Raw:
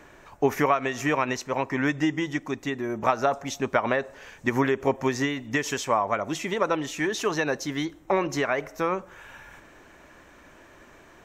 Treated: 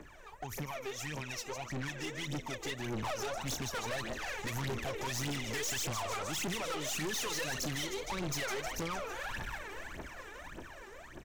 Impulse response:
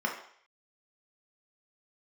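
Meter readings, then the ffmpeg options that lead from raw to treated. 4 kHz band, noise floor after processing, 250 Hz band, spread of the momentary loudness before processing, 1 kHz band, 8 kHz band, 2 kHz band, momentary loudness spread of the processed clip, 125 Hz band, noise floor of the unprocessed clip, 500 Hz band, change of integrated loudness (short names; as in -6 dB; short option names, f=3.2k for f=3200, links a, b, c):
-2.0 dB, -51 dBFS, -14.0 dB, 6 LU, -13.0 dB, -0.5 dB, -9.5 dB, 12 LU, -5.5 dB, -52 dBFS, -14.0 dB, -11.0 dB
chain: -filter_complex "[0:a]acrossover=split=130|3000[a][b][c];[b]acompressor=threshold=-36dB:ratio=6[d];[a][d][c]amix=inputs=3:normalize=0,asplit=2[e][f];[f]asplit=7[g][h][i][j][k][l][m];[g]adelay=153,afreqshift=98,volume=-11.5dB[n];[h]adelay=306,afreqshift=196,volume=-15.8dB[o];[i]adelay=459,afreqshift=294,volume=-20.1dB[p];[j]adelay=612,afreqshift=392,volume=-24.4dB[q];[k]adelay=765,afreqshift=490,volume=-28.7dB[r];[l]adelay=918,afreqshift=588,volume=-33dB[s];[m]adelay=1071,afreqshift=686,volume=-37.3dB[t];[n][o][p][q][r][s][t]amix=inputs=7:normalize=0[u];[e][u]amix=inputs=2:normalize=0,dynaudnorm=f=390:g=13:m=11.5dB,aphaser=in_gain=1:out_gain=1:delay=2.6:decay=0.8:speed=1.7:type=triangular,aeval=exprs='(tanh(25.1*val(0)+0.4)-tanh(0.4))/25.1':c=same,volume=-6.5dB"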